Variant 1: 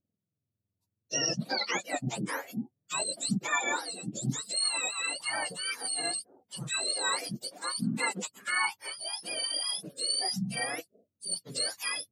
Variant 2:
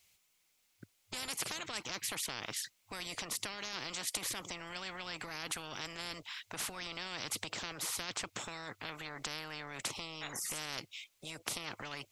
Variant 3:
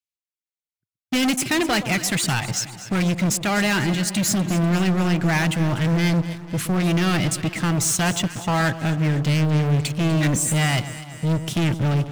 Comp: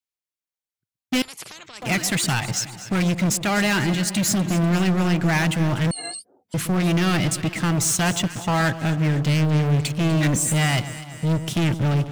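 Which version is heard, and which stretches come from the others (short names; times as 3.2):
3
1.22–1.82 from 2
5.91–6.54 from 1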